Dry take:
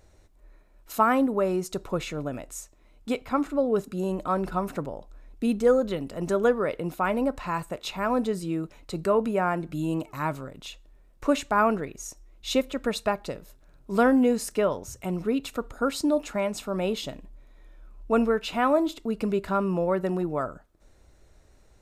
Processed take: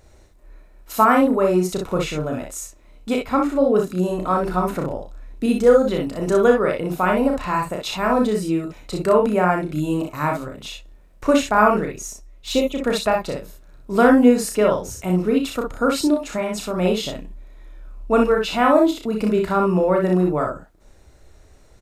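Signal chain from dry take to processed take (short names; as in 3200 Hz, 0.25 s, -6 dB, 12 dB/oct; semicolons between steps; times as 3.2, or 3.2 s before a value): 12.06–12.84 envelope flanger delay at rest 9.2 ms, full sweep at -23.5 dBFS; 16.1–16.77 compressor 4:1, threshold -26 dBFS, peak gain reduction 7 dB; early reflections 33 ms -5 dB, 61 ms -4.5 dB, 72 ms -14.5 dB; gain +5 dB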